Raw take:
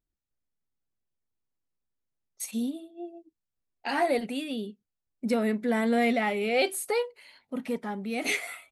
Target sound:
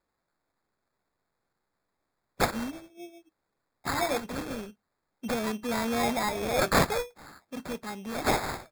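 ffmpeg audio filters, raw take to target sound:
-af "crystalizer=i=6:c=0,acrusher=samples=15:mix=1:aa=0.000001,volume=-5.5dB"

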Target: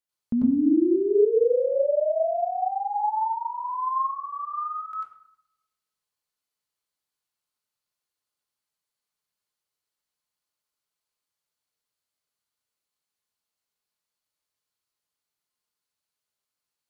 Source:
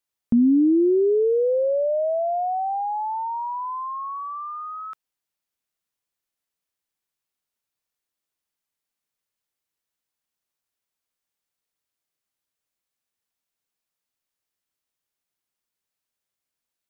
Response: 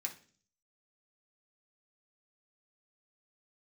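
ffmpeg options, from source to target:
-filter_complex "[0:a]asplit=2[a][b];[1:a]atrim=start_sample=2205,asetrate=24696,aresample=44100,adelay=93[c];[b][c]afir=irnorm=-1:irlink=0,volume=1.5dB[d];[a][d]amix=inputs=2:normalize=0,volume=-6.5dB"

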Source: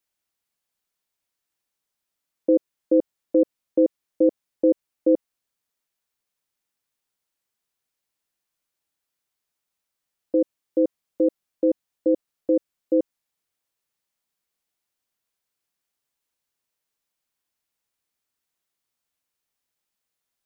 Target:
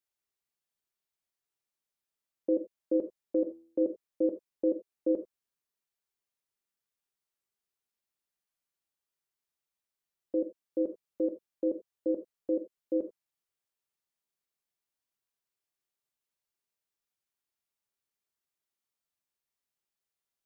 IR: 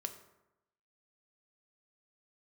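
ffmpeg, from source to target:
-filter_complex "[0:a]asettb=1/sr,asplit=3[a][b][c];[a]atrim=end=3.374[d];[b]atrim=start=3.37:end=3.84,asetpts=PTS-STARTPTS,afade=t=in:d=0.004:c=qsin,afade=t=out:st=0.466:d=0.004:c=qsin,bandreject=f=82.79:t=h:w=4,bandreject=f=165.58:t=h:w=4,bandreject=f=248.37:t=h:w=4,bandreject=f=331.16:t=h:w=4,bandreject=f=413.95:t=h:w=4,bandreject=f=496.74:t=h:w=4,bandreject=f=579.53:t=h:w=4,bandreject=f=662.32:t=h:w=4,bandreject=f=745.11:t=h:w=4,bandreject=f=827.9:t=h:w=4,bandreject=f=910.69:t=h:w=4,bandreject=f=993.48:t=h:w=4,bandreject=f=1.07627k:t=h:w=4,bandreject=f=1.15906k:t=h:w=4,bandreject=f=1.24185k:t=h:w=4,bandreject=f=1.32464k:t=h:w=4,bandreject=f=1.40743k:t=h:w=4,bandreject=f=1.49022k:t=h:w=4,bandreject=f=1.57301k:t=h:w=4,bandreject=f=1.6558k:t=h:w=4,bandreject=f=1.73859k:t=h:w=4,bandreject=f=1.82138k:t=h:w=4,bandreject=f=1.90417k:t=h:w=4,bandreject=f=1.98696k:t=h:w=4,bandreject=f=2.06975k:t=h:w=4,bandreject=f=2.15254k:t=h:w=4,bandreject=f=2.23533k:t=h:w=4,bandreject=f=2.31812k:t=h:w=4[e];[c]atrim=start=3.836[f];[d][e]acrossfade=d=0.004:c1=hsin:c2=qsin[g];[g][f]acrossfade=d=0.004:c1=qsin:c2=hsin[h];[1:a]atrim=start_sample=2205,atrim=end_sample=4410[i];[h][i]afir=irnorm=-1:irlink=0,volume=-6.5dB"

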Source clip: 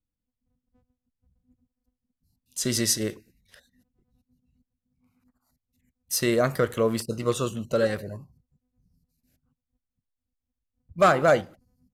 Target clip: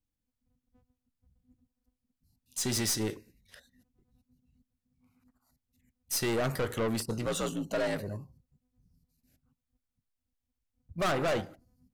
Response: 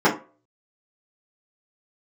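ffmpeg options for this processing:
-filter_complex "[0:a]asettb=1/sr,asplit=3[a][b][c];[a]atrim=end=7.264[d];[b]atrim=start=7.26:end=8,asetpts=PTS-STARTPTS,afade=t=in:d=0.004:c=qsin,afade=t=out:st=0.736:d=0.004:c=qsin,afreqshift=56[e];[c]atrim=start=7.996[f];[d][e]acrossfade=d=0.004:c1=hsin:c2=qsin[g];[g][f]acrossfade=d=0.004:c1=qsin:c2=hsin,aeval=exprs='(tanh(20*val(0)+0.2)-tanh(0.2))/20':c=same,asplit=2[h][i];[1:a]atrim=start_sample=2205[j];[i][j]afir=irnorm=-1:irlink=0,volume=-39.5dB[k];[h][k]amix=inputs=2:normalize=0"

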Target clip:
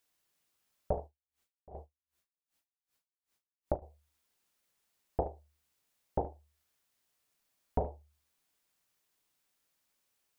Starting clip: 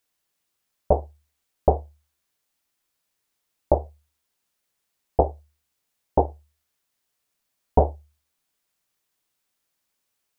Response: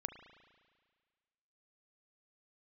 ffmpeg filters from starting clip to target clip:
-filter_complex "[0:a]acompressor=threshold=-37dB:ratio=2[a];[1:a]atrim=start_sample=2205,atrim=end_sample=4410[b];[a][b]afir=irnorm=-1:irlink=0,asettb=1/sr,asplit=3[c][d][e];[c]atrim=end=1.034[f];[d]atrim=start=1.03:end=3.82,asetpts=PTS-STARTPTS,afade=t=in:d=0.004:c=qsin,afade=t=out:st=2.786:d=0.004:c=qsin,aeval=exprs='val(0)*pow(10,-40*(0.5-0.5*cos(2*PI*2.6*n/s))/20)':c=same[g];[e]atrim=start=3.816[h];[f][g]acrossfade=d=0.004:c1=hsin:c2=qsin[i];[i][h]acrossfade=d=0.004:c1=qsin:c2=hsin,volume=1dB"

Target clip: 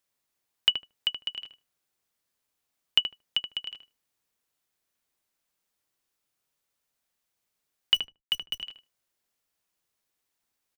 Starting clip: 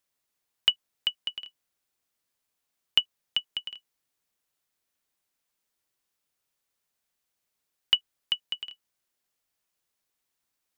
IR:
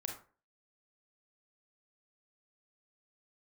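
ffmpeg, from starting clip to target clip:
-filter_complex "[0:a]asettb=1/sr,asplit=3[a][b][c];[a]atrim=end=7.944[d];[b]atrim=start=7.94:end=8.6,asetpts=PTS-STARTPTS,afade=t=in:d=0.004:c=qsin,afade=t=out:st=0.656:d=0.004:c=qsin,acrusher=bits=7:dc=4:mix=0:aa=0.000001[e];[c]atrim=start=8.596[f];[d][e]acrossfade=d=0.004:c1=hsin:c2=qsin[g];[g][f]acrossfade=d=0.004:c1=qsin:c2=hsin,asplit=2[h][i];[i]adelay=76,lowpass=f=1.3k:p=1,volume=-4dB,asplit=2[j][k];[k]adelay=76,lowpass=f=1.3k:p=1,volume=0.16,asplit=2[l][m];[m]adelay=76,lowpass=f=1.3k:p=1,volume=0.16[n];[h][j][l][n]amix=inputs=4:normalize=0"

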